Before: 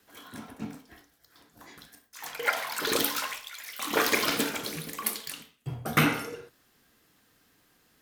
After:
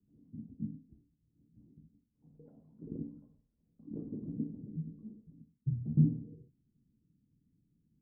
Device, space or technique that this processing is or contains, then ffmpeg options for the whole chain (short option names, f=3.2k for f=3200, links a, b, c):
the neighbour's flat through the wall: -af "lowpass=f=250:w=0.5412,lowpass=f=250:w=1.3066,equalizer=f=150:t=o:w=0.95:g=6,volume=-2.5dB"